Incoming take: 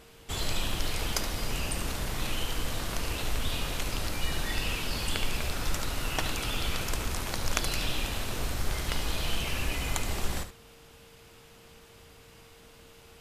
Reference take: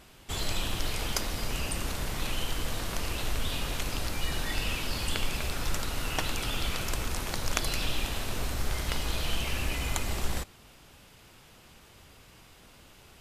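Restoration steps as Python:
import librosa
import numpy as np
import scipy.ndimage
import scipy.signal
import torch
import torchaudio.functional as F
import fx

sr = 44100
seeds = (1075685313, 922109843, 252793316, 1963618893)

y = fx.notch(x, sr, hz=460.0, q=30.0)
y = fx.fix_echo_inverse(y, sr, delay_ms=72, level_db=-11.0)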